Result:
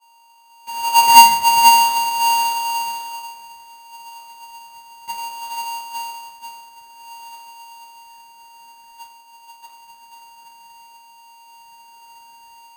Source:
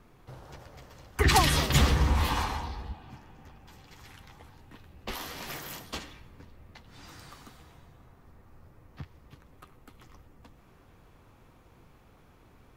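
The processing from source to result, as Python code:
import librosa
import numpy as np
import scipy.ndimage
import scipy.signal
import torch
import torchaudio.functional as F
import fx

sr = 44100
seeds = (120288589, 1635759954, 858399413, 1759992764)

y = fx.tape_start_head(x, sr, length_s=2.17)
y = fx.wah_lfo(y, sr, hz=0.56, low_hz=510.0, high_hz=2000.0, q=7.4)
y = fx.add_hum(y, sr, base_hz=50, snr_db=30)
y = np.abs(y)
y = y + 10.0 ** (-6.0 / 20.0) * np.pad(y, (int(487 * sr / 1000.0), 0))[:len(y)]
y = fx.room_shoebox(y, sr, seeds[0], volume_m3=390.0, walls='furnished', distance_m=6.6)
y = y * np.sign(np.sin(2.0 * np.pi * 930.0 * np.arange(len(y)) / sr))
y = y * librosa.db_to_amplitude(-3.0)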